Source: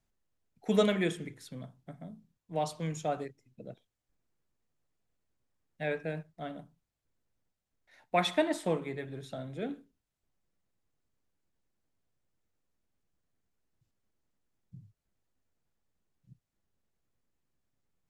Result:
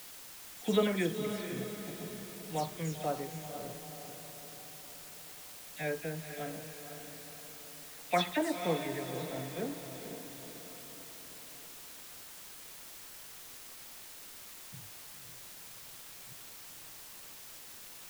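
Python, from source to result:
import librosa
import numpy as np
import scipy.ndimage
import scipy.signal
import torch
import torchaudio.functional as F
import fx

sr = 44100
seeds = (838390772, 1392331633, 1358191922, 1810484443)

y = fx.spec_delay(x, sr, highs='early', ms=112)
y = fx.echo_diffused(y, sr, ms=501, feedback_pct=52, wet_db=-8.0)
y = fx.quant_dither(y, sr, seeds[0], bits=8, dither='triangular')
y = y * librosa.db_to_amplitude(-1.5)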